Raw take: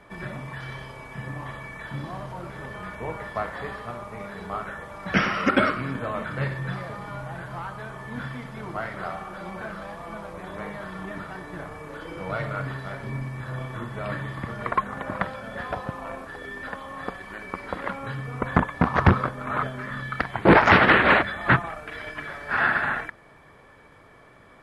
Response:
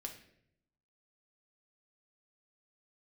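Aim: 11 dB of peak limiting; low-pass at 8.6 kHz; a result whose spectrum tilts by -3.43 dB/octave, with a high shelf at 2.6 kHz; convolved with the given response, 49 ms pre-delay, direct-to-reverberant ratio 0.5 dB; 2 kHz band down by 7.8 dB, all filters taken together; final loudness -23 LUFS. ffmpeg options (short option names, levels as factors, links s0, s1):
-filter_complex "[0:a]lowpass=8600,equalizer=f=2000:t=o:g=-7.5,highshelf=f=2600:g=-7,alimiter=limit=0.15:level=0:latency=1,asplit=2[s0][s1];[1:a]atrim=start_sample=2205,adelay=49[s2];[s1][s2]afir=irnorm=-1:irlink=0,volume=1.33[s3];[s0][s3]amix=inputs=2:normalize=0,volume=2.37"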